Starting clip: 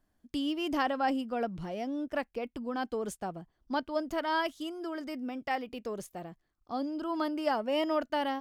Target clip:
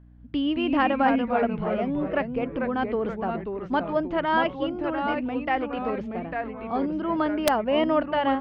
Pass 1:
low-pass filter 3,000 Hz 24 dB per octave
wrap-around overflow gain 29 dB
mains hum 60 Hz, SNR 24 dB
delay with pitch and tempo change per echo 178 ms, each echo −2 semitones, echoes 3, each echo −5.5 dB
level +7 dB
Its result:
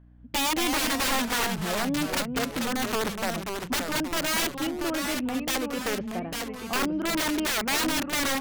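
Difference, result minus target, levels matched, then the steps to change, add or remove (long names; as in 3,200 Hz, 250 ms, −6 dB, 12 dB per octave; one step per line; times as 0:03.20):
wrap-around overflow: distortion +33 dB
change: wrap-around overflow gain 17 dB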